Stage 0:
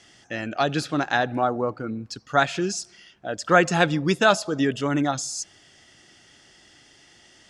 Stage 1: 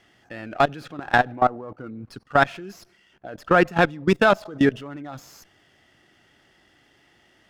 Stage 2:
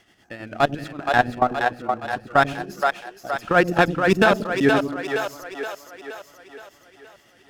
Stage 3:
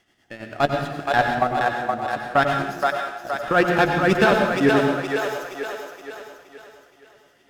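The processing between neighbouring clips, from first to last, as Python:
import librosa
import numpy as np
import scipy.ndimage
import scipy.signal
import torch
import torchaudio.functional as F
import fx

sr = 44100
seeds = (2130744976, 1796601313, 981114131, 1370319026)

y1 = fx.level_steps(x, sr, step_db=21)
y1 = fx.bass_treble(y1, sr, bass_db=-1, treble_db=-14)
y1 = fx.running_max(y1, sr, window=3)
y1 = F.gain(torch.from_numpy(y1), 6.5).numpy()
y2 = fx.high_shelf(y1, sr, hz=5900.0, db=7.0)
y2 = y2 * (1.0 - 0.56 / 2.0 + 0.56 / 2.0 * np.cos(2.0 * np.pi * 9.2 * (np.arange(len(y2)) / sr)))
y2 = fx.echo_split(y2, sr, split_hz=380.0, low_ms=91, high_ms=471, feedback_pct=52, wet_db=-4.0)
y2 = F.gain(torch.from_numpy(y2), 2.0).numpy()
y3 = fx.leveller(y2, sr, passes=1)
y3 = fx.doubler(y3, sr, ms=14.0, db=-13.0)
y3 = fx.rev_plate(y3, sr, seeds[0], rt60_s=0.84, hf_ratio=0.85, predelay_ms=80, drr_db=3.5)
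y3 = F.gain(torch.from_numpy(y3), -4.5).numpy()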